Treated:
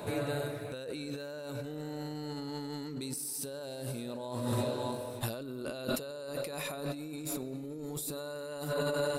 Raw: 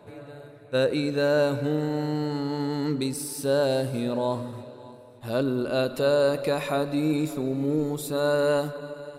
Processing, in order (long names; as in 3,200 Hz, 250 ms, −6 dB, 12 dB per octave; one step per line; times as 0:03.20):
high-shelf EQ 4,500 Hz +12 dB
brickwall limiter −18.5 dBFS, peak gain reduction 7 dB
compressor whose output falls as the input rises −38 dBFS, ratio −1